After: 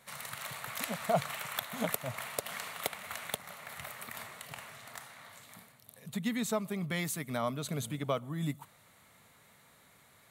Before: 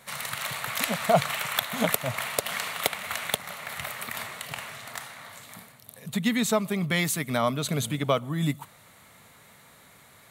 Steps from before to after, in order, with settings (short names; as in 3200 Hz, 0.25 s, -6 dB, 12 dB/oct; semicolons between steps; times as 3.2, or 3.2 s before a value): dynamic EQ 3100 Hz, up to -3 dB, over -43 dBFS, Q 0.77; gain -8 dB